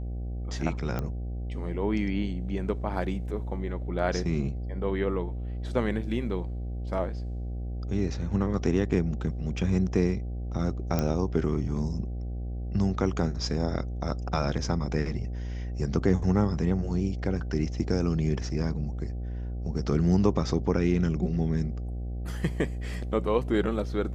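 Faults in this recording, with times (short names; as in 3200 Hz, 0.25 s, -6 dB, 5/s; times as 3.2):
buzz 60 Hz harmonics 13 -33 dBFS
0.99 pop -18 dBFS
10.99 pop -13 dBFS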